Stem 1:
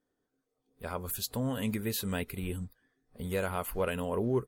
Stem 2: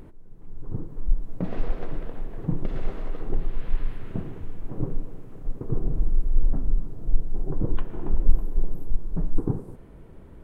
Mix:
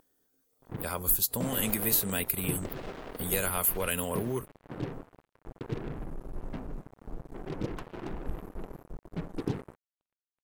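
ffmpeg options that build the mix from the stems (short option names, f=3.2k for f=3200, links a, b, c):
-filter_complex "[0:a]aemphasis=mode=production:type=75fm,acrossover=split=190|1200[a][b][c];[a]acompressor=threshold=-42dB:ratio=4[d];[b]acompressor=threshold=-35dB:ratio=4[e];[c]acompressor=threshold=-27dB:ratio=4[f];[d][e][f]amix=inputs=3:normalize=0,volume=3dB[g];[1:a]highpass=f=160:p=1,equalizer=f=660:w=0.86:g=2.5,acrusher=bits=5:mix=0:aa=0.5,volume=-3.5dB[h];[g][h]amix=inputs=2:normalize=0"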